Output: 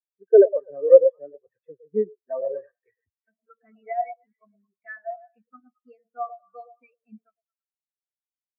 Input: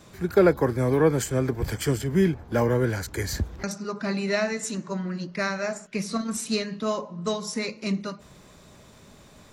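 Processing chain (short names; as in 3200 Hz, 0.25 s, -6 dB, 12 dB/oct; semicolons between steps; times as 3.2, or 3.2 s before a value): HPF 300 Hz 6 dB/oct; tilt shelf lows -6.5 dB, about 750 Hz; in parallel at -2 dB: limiter -20 dBFS, peak gain reduction 11.5 dB; on the sum: varispeed +11%; air absorption 310 m; delay with a stepping band-pass 0.11 s, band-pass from 620 Hz, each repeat 0.7 oct, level -3 dB; spectral expander 4:1; gain +7 dB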